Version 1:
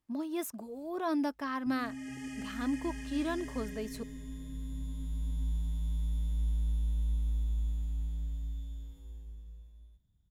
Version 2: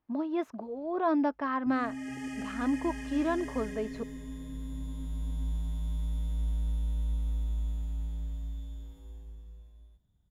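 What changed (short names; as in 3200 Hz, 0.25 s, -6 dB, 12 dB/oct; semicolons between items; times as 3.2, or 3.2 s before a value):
speech: add air absorption 240 m; master: add bell 740 Hz +7.5 dB 2.8 oct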